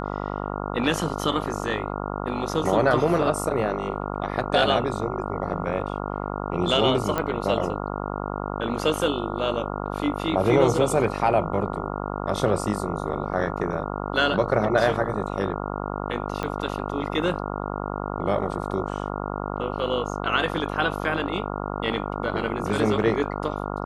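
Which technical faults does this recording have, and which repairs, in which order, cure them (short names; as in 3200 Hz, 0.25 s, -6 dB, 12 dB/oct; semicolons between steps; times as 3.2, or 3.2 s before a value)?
buzz 50 Hz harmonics 28 -30 dBFS
7.18 pop -11 dBFS
16.43 pop -14 dBFS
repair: de-click; de-hum 50 Hz, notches 28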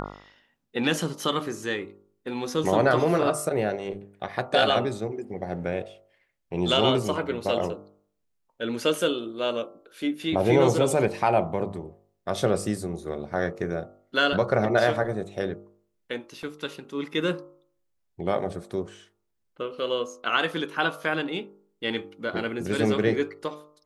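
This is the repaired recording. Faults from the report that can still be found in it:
16.43 pop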